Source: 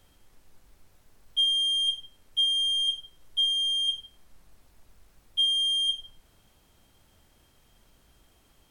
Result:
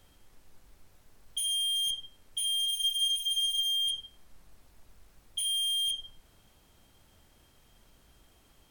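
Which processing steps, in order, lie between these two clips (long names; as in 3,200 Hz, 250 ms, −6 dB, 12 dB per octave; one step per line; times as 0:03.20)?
wave folding −25.5 dBFS
frozen spectrum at 0:02.67, 0.96 s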